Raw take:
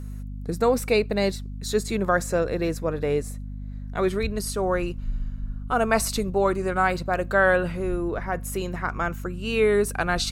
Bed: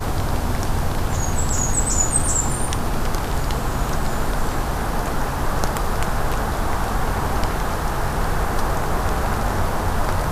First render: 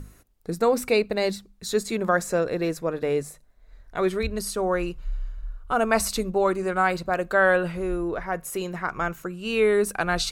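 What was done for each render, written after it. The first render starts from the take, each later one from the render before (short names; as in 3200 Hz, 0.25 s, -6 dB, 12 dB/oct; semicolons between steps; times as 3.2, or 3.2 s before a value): notches 50/100/150/200/250 Hz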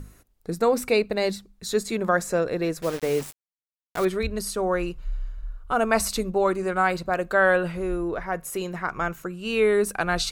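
2.82–4.05 requantised 6-bit, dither none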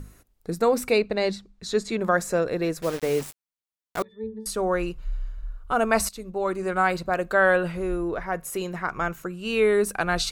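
0.98–2.01 LPF 6400 Hz; 4.02–4.46 octave resonator A, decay 0.32 s; 6.09–6.75 fade in, from -17 dB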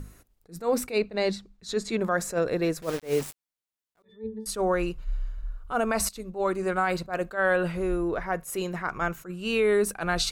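limiter -15 dBFS, peak gain reduction 8 dB; attack slew limiter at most 240 dB/s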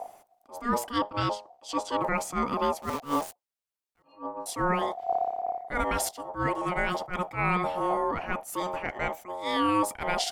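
octaver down 1 oct, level +1 dB; ring modulator 720 Hz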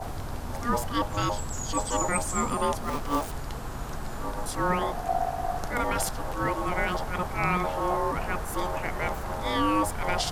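add bed -13 dB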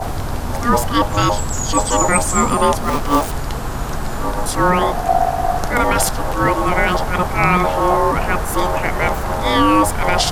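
gain +12 dB; limiter -2 dBFS, peak gain reduction 2 dB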